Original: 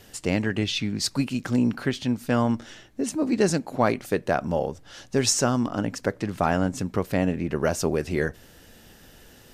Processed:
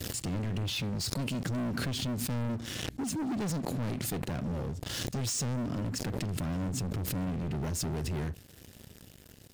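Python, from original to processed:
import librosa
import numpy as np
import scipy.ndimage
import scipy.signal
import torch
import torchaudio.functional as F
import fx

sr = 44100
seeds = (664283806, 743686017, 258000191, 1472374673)

y = scipy.signal.sosfilt(scipy.signal.butter(4, 77.0, 'highpass', fs=sr, output='sos'), x)
y = fx.tone_stack(y, sr, knobs='10-0-1')
y = fx.notch(y, sr, hz=5900.0, q=17.0)
y = fx.leveller(y, sr, passes=5)
y = fx.pre_swell(y, sr, db_per_s=21.0)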